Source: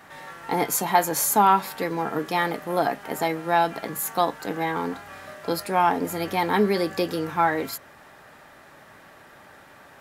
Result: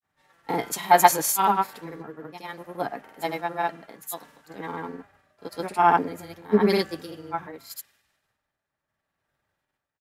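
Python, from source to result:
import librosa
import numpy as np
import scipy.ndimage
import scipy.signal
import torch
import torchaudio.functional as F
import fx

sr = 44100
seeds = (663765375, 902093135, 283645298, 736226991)

y = fx.tremolo_random(x, sr, seeds[0], hz=3.5, depth_pct=55)
y = fx.granulator(y, sr, seeds[1], grain_ms=100.0, per_s=20.0, spray_ms=100.0, spread_st=0)
y = fx.band_widen(y, sr, depth_pct=100)
y = y * 10.0 ** (-2.0 / 20.0)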